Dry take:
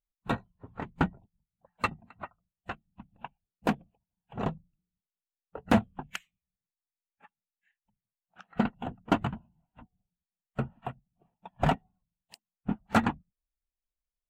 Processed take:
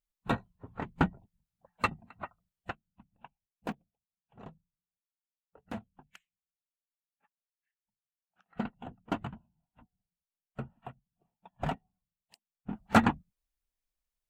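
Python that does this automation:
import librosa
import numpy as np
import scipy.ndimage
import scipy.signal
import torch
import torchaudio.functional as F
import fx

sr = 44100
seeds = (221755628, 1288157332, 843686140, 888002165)

y = fx.gain(x, sr, db=fx.steps((0.0, 0.0), (2.71, -10.0), (3.72, -17.5), (8.46, -8.0), (12.73, 2.0)))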